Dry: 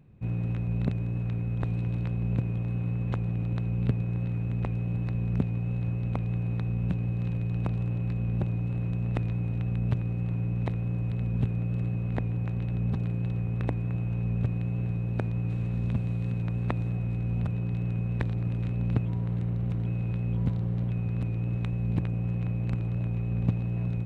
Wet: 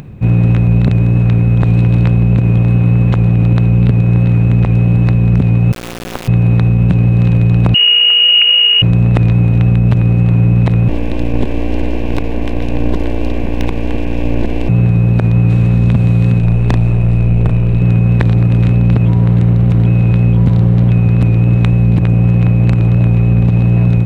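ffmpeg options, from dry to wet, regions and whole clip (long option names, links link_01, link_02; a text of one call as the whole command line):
ffmpeg -i in.wav -filter_complex "[0:a]asettb=1/sr,asplit=3[link_01][link_02][link_03];[link_01]atrim=end=5.724[link_04];[link_02]atrim=start=5.72:end=6.28,asetpts=PTS-STARTPTS,afade=type=in:duration=0.004:curve=qsin,afade=type=out:start_time=0.556:duration=0.004:curve=qsin,highpass=frequency=250:width=0.5412,highpass=frequency=250:width=1.3066,bandreject=frequency=330:width=7,acrusher=bits=4:dc=4:mix=0:aa=0.000001[link_05];[link_03]atrim=start=6.276[link_06];[link_04][link_05]acrossfade=duration=0.004:curve1=hsin:curve2=qsin[link_07];[link_07][link_06]acrossfade=duration=0.004:curve1=qsin:curve2=hsin,asettb=1/sr,asplit=3[link_08][link_09][link_10];[link_08]atrim=end=7.744[link_11];[link_09]atrim=start=7.74:end=8.82,asetpts=PTS-STARTPTS,afade=type=in:duration=0.004:curve=qsin,afade=type=out:start_time=1.076:duration=0.004:curve=qsin,acrusher=bits=7:mix=0:aa=0.5,lowpass=frequency=2600:width_type=q:width=0.5098,lowpass=frequency=2600:width_type=q:width=0.6013,lowpass=frequency=2600:width_type=q:width=0.9,lowpass=frequency=2600:width_type=q:width=2.563,afreqshift=-3000[link_12];[link_10]atrim=start=8.816[link_13];[link_11][link_12]acrossfade=duration=0.004:curve1=hsin:curve2=qsin[link_14];[link_14][link_13]acrossfade=duration=0.004:curve1=qsin:curve2=hsin,asettb=1/sr,asplit=3[link_15][link_16][link_17];[link_15]atrim=end=10.884[link_18];[link_16]atrim=start=10.88:end=14.69,asetpts=PTS-STARTPTS,afade=type=in:duration=0.004:curve=qsin,afade=type=out:start_time=3.806:duration=0.004:curve=qsin,equalizer=frequency=110:width_type=o:width=0.23:gain=-12,aeval=exprs='abs(val(0))':channel_layout=same,asuperstop=centerf=1300:order=4:qfactor=4.5[link_19];[link_17]atrim=start=14.686[link_20];[link_18][link_19]acrossfade=duration=0.004:curve1=hsin:curve2=qsin[link_21];[link_21][link_20]acrossfade=duration=0.004:curve1=qsin:curve2=hsin,asettb=1/sr,asplit=3[link_22][link_23][link_24];[link_22]atrim=end=16.394[link_25];[link_23]atrim=start=16.39:end=17.82,asetpts=PTS-STARTPTS,afade=type=in:duration=0.004:curve=qsin,afade=type=out:start_time=1.426:duration=0.004:curve=qsin,aeval=exprs='(tanh(20*val(0)+0.55)-tanh(0.55))/20':channel_layout=same,asplit=2[link_26][link_27];[link_27]adelay=36,volume=-5dB[link_28];[link_26][link_28]amix=inputs=2:normalize=0,atrim=end_sample=63063[link_29];[link_24]atrim=start=17.816[link_30];[link_25][link_29]acrossfade=duration=0.004:curve1=hsin:curve2=qsin[link_31];[link_31][link_30]acrossfade=duration=0.004:curve1=qsin:curve2=hsin,acompressor=mode=upward:threshold=-46dB:ratio=2.5,alimiter=level_in=21dB:limit=-1dB:release=50:level=0:latency=1,volume=-1dB" out.wav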